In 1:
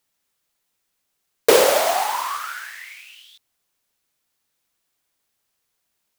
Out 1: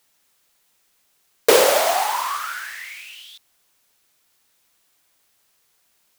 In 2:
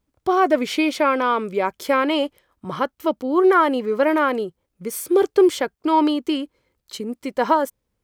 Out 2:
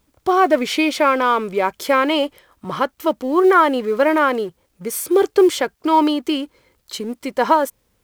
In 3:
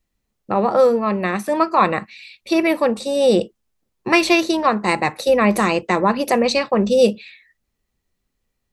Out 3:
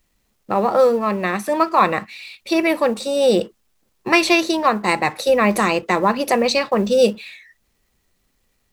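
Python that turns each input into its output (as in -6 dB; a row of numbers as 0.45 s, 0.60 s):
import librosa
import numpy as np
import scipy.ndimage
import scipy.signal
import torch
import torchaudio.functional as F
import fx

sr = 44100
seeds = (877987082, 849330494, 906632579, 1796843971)

y = fx.law_mismatch(x, sr, coded='mu')
y = fx.low_shelf(y, sr, hz=380.0, db=-4.0)
y = y * 10.0 ** (-1.5 / 20.0) / np.max(np.abs(y))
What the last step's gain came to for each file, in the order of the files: +1.0 dB, +3.5 dB, +1.0 dB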